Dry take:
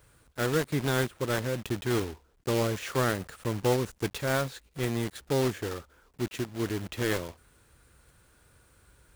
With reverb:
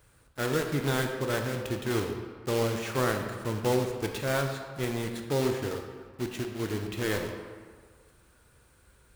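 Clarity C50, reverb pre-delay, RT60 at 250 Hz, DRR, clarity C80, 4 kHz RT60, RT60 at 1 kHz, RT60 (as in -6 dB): 5.5 dB, 20 ms, 1.6 s, 3.5 dB, 7.0 dB, 1.0 s, 1.8 s, 1.8 s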